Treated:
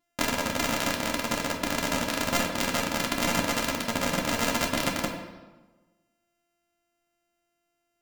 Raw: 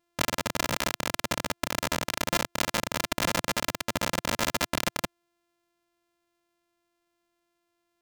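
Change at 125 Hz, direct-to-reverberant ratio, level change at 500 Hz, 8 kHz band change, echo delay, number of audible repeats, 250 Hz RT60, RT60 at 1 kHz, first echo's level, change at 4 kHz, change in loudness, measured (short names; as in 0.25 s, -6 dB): +2.0 dB, -0.5 dB, +2.5 dB, +1.0 dB, none, none, 1.3 s, 1.1 s, none, +0.5 dB, +1.5 dB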